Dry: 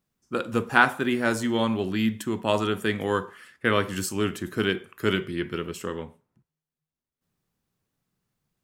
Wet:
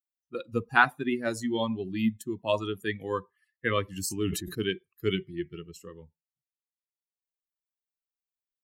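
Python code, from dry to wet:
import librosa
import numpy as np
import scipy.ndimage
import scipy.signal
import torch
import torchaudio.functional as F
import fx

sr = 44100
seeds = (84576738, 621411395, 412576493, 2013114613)

y = fx.bin_expand(x, sr, power=2.0)
y = fx.sustainer(y, sr, db_per_s=49.0, at=(4.01, 4.63))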